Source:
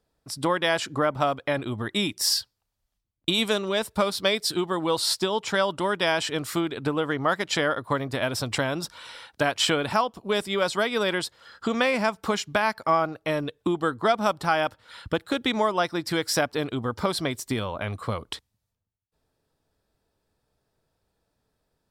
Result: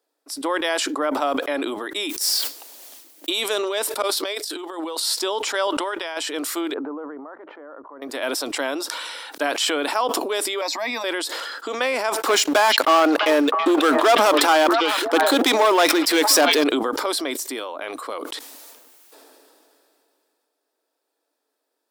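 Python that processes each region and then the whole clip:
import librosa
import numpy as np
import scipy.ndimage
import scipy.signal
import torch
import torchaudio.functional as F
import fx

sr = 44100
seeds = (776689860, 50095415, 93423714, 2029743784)

y = fx.chain(x, sr, fx.peak_eq(hz=1300.0, db=-6.0, octaves=1.4),
    fx.mod_noise(seeds[0], snr_db=15), at=(2.09, 3.29))
y = fx.chain(y, sr, fx.highpass(hz=300.0, slope=24),
    fx.over_compress(threshold_db=-31.0, ratio=-0.5), at=(4.02, 5.0))
y = fx.chain(y, sr, fx.highpass(hz=550.0, slope=6),
    fx.high_shelf(hz=5700.0, db=-9.0),
    fx.over_compress(threshold_db=-28.0, ratio=-0.5), at=(5.67, 6.17))
y = fx.chain(y, sr, fx.lowpass(hz=1300.0, slope=24),
    fx.level_steps(step_db=20), at=(6.74, 8.02))
y = fx.chain(y, sr, fx.highpass_res(hz=250.0, q=2.3),
    fx.fixed_phaser(hz=2100.0, stages=8), at=(10.61, 11.04))
y = fx.chain(y, sr, fx.leveller(passes=3),
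    fx.echo_stepped(ms=328, hz=2900.0, octaves=-1.4, feedback_pct=70, wet_db=-9.5), at=(12.21, 16.64))
y = scipy.signal.sosfilt(scipy.signal.ellip(4, 1.0, 40, 280.0, 'highpass', fs=sr, output='sos'), y)
y = fx.high_shelf(y, sr, hz=7700.0, db=7.0)
y = fx.sustainer(y, sr, db_per_s=21.0)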